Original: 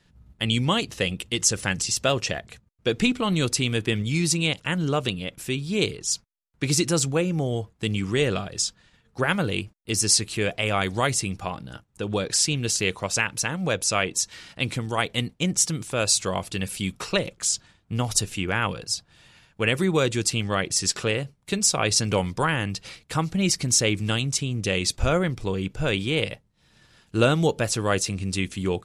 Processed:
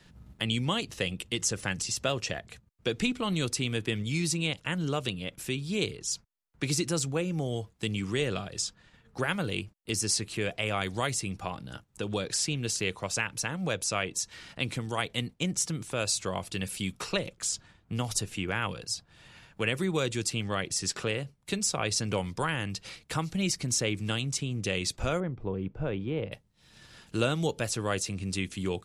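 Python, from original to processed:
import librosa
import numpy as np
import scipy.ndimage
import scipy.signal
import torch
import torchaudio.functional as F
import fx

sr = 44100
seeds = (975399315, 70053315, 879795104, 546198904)

y = fx.lowpass(x, sr, hz=1000.0, slope=12, at=(25.2, 26.32))
y = fx.band_squash(y, sr, depth_pct=40)
y = y * librosa.db_to_amplitude(-6.5)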